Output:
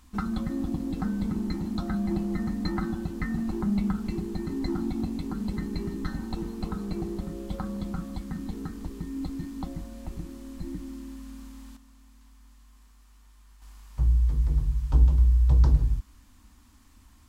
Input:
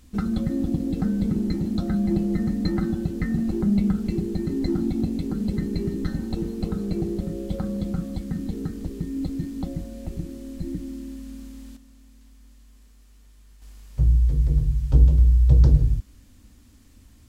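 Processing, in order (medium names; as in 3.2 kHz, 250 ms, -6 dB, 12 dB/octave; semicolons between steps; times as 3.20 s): graphic EQ 125/500/1000 Hz -7/-8/+11 dB; trim -2.5 dB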